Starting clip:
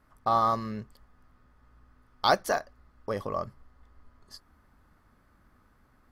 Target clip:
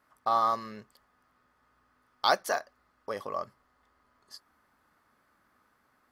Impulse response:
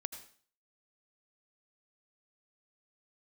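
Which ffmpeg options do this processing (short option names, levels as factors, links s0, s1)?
-af "highpass=f=590:p=1"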